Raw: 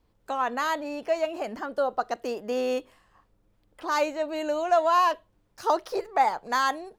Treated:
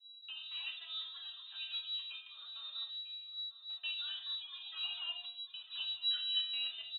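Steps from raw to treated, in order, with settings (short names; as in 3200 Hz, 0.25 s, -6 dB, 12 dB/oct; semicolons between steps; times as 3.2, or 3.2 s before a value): local time reversal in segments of 0.142 s; low shelf 140 Hz +9 dB; in parallel at 0 dB: compressor, threshold -34 dBFS, peak gain reduction 16.5 dB; on the sum: flange 0.57 Hz, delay 8.6 ms, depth 3.8 ms, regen +39%; hard clip -20 dBFS, distortion -16 dB; air absorption 150 m; fixed phaser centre 2600 Hz, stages 8; resonator 290 Hz, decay 0.56 s, harmonics all, mix 90%; on a send: echo 0.948 s -14.5 dB; on the sum: shoebox room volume 610 m³, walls furnished, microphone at 2.3 m; inverted band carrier 3900 Hz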